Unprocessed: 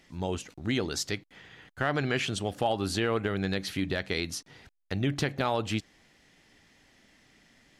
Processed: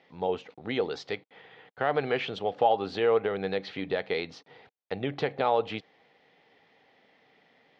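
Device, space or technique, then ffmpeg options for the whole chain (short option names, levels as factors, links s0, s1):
kitchen radio: -af "highpass=200,equalizer=f=220:t=q:w=4:g=-5,equalizer=f=320:t=q:w=4:g=-6,equalizer=f=470:t=q:w=4:g=9,equalizer=f=790:t=q:w=4:g=7,equalizer=f=1600:t=q:w=4:g=-4,equalizer=f=2800:t=q:w=4:g=-3,lowpass=f=3700:w=0.5412,lowpass=f=3700:w=1.3066"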